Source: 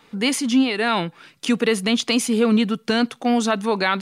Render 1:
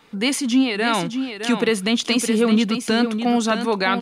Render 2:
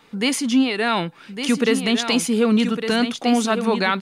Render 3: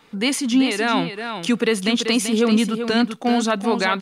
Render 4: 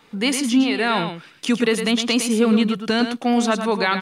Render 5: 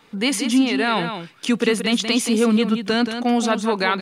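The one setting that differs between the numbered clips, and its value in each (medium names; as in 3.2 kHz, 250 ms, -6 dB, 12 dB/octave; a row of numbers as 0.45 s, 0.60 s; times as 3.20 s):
delay, time: 613 ms, 1156 ms, 387 ms, 109 ms, 177 ms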